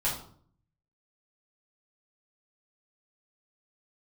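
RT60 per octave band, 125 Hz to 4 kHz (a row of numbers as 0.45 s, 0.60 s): 0.95 s, 0.75 s, 0.60 s, 0.50 s, 0.40 s, 0.40 s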